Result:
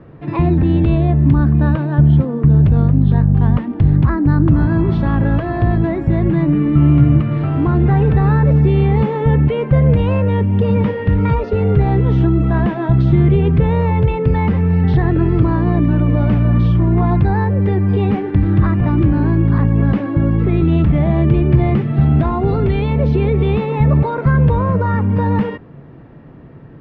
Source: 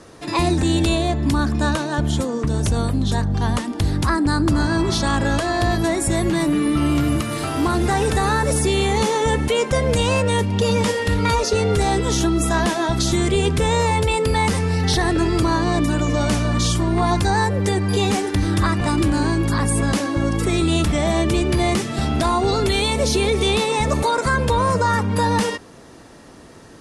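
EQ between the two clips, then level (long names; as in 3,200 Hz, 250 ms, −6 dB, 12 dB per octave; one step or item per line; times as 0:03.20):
low-pass filter 2,600 Hz 24 dB per octave
parametric band 140 Hz +11.5 dB 0.43 octaves
low-shelf EQ 470 Hz +10.5 dB
−5.0 dB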